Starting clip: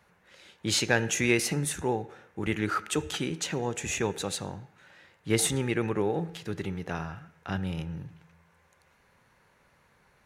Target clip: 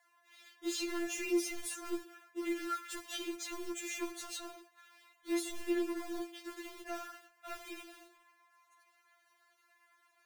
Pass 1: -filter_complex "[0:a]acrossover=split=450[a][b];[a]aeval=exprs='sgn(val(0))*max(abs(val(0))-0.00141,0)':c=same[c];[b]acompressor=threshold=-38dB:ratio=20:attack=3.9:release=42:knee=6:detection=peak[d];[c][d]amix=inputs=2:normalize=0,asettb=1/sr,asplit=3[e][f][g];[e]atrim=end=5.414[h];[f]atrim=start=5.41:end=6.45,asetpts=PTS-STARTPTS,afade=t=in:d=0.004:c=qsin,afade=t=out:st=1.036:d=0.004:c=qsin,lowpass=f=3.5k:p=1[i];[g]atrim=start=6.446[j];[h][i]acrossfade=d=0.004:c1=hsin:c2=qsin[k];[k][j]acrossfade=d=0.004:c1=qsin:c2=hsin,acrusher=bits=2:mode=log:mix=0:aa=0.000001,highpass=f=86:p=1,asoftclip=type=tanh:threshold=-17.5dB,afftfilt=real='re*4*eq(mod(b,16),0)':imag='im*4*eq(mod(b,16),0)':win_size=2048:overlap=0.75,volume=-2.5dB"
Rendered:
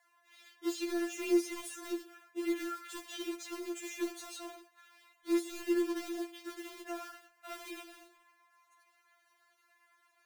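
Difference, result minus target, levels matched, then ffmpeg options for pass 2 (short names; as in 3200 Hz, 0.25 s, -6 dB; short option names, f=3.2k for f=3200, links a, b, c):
soft clip: distortion -13 dB; compressor: peak gain reduction +8 dB
-filter_complex "[0:a]acrossover=split=450[a][b];[a]aeval=exprs='sgn(val(0))*max(abs(val(0))-0.00141,0)':c=same[c];[b]acompressor=threshold=-29.5dB:ratio=20:attack=3.9:release=42:knee=6:detection=peak[d];[c][d]amix=inputs=2:normalize=0,asettb=1/sr,asplit=3[e][f][g];[e]atrim=end=5.414[h];[f]atrim=start=5.41:end=6.45,asetpts=PTS-STARTPTS,afade=t=in:d=0.004:c=qsin,afade=t=out:st=1.036:d=0.004:c=qsin,lowpass=f=3.5k:p=1[i];[g]atrim=start=6.446[j];[h][i]acrossfade=d=0.004:c1=hsin:c2=qsin[k];[k][j]acrossfade=d=0.004:c1=qsin:c2=hsin,acrusher=bits=2:mode=log:mix=0:aa=0.000001,highpass=f=86:p=1,asoftclip=type=tanh:threshold=-28dB,afftfilt=real='re*4*eq(mod(b,16),0)':imag='im*4*eq(mod(b,16),0)':win_size=2048:overlap=0.75,volume=-2.5dB"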